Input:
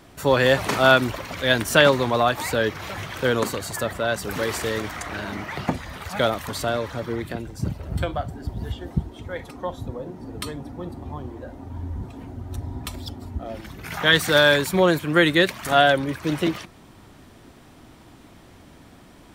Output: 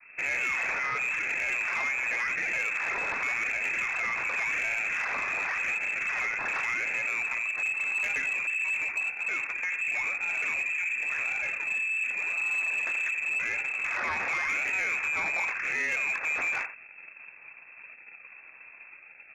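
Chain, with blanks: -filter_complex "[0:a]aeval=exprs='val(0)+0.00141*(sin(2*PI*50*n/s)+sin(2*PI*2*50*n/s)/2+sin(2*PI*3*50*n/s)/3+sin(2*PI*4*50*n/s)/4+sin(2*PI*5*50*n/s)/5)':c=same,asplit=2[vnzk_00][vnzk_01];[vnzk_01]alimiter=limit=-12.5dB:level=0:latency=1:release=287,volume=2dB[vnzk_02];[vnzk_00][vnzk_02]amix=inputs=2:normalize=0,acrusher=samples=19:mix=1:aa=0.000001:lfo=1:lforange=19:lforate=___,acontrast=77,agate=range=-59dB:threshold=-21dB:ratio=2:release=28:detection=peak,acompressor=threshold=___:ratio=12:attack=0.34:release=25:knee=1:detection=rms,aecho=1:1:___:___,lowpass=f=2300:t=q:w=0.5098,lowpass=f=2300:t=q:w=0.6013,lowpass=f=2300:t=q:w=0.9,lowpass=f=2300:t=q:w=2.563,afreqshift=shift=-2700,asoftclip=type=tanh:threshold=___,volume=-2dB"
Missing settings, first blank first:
0.9, -22dB, 89, 0.224, -21dB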